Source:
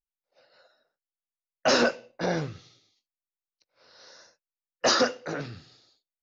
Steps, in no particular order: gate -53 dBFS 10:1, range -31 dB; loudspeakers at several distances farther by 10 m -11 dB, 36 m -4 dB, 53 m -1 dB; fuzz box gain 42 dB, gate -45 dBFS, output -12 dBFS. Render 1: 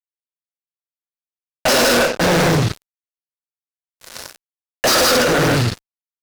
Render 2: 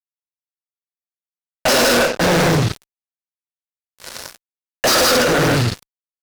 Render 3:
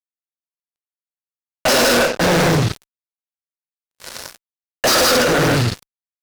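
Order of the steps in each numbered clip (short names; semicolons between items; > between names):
gate > loudspeakers at several distances > fuzz box; loudspeakers at several distances > gate > fuzz box; loudspeakers at several distances > fuzz box > gate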